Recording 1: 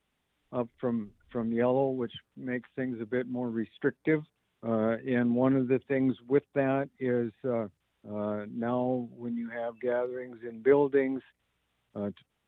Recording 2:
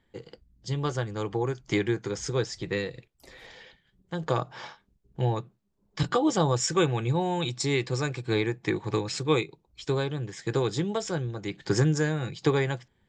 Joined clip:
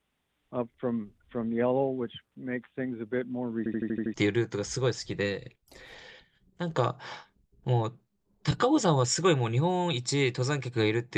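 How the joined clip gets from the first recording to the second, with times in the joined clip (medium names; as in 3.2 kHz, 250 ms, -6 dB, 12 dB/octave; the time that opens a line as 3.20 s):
recording 1
3.58 s: stutter in place 0.08 s, 7 plays
4.14 s: go over to recording 2 from 1.66 s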